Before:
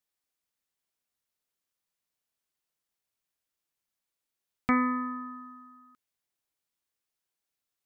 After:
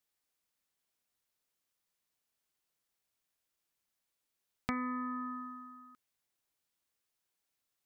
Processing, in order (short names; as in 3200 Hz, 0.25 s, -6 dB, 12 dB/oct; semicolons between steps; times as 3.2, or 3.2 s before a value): compressor 4:1, threshold -37 dBFS, peak gain reduction 13.5 dB; gain +1.5 dB